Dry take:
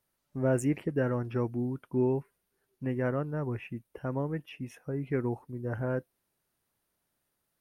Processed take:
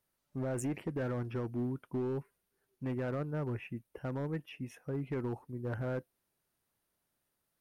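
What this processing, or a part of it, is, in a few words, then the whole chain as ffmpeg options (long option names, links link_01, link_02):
limiter into clipper: -af "alimiter=limit=-23dB:level=0:latency=1:release=32,asoftclip=type=hard:threshold=-27.5dB,volume=-2.5dB"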